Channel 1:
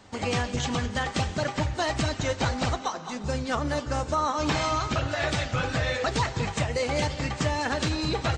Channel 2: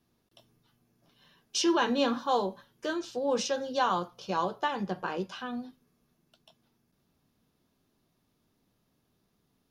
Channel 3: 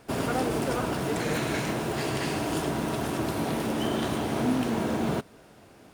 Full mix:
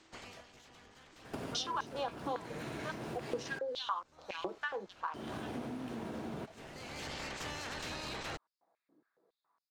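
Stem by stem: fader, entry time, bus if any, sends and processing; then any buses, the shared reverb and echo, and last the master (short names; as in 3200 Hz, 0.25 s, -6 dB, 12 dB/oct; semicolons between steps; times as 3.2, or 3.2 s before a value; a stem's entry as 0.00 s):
-5.5 dB, 0.00 s, no send, spectral limiter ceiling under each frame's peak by 19 dB; tube stage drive 28 dB, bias 0.65; sustainer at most 22 dB/s; auto duck -20 dB, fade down 0.45 s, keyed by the second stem
-0.5 dB, 0.00 s, no send, Wiener smoothing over 15 samples; comb 6.1 ms, depth 32%; stepped high-pass 7.2 Hz 310–5400 Hz
+1.0 dB, 1.25 s, muted 3.59–5.14, no send, compressor 10:1, threshold -35 dBFS, peak gain reduction 14.5 dB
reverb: off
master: high shelf 6800 Hz -7.5 dB; compressor 2.5:1, threshold -40 dBFS, peak gain reduction 15.5 dB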